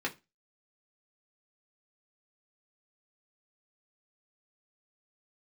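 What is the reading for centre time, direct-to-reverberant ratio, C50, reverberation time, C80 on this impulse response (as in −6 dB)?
10 ms, −3.0 dB, 19.0 dB, 0.25 s, 26.5 dB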